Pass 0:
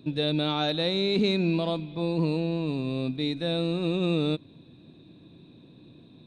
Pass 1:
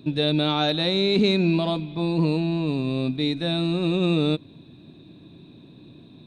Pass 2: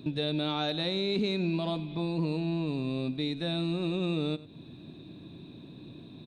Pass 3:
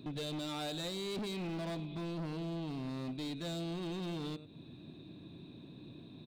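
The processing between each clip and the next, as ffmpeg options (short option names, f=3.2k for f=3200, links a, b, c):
-af "bandreject=f=500:w=12,volume=4.5dB"
-af "acompressor=threshold=-34dB:ratio=2,aecho=1:1:96:0.126"
-af "volume=32dB,asoftclip=hard,volume=-32dB,volume=-4.5dB"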